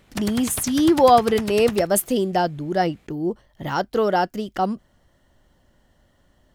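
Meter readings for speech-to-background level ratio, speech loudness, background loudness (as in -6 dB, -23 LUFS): 12.0 dB, -21.0 LUFS, -33.0 LUFS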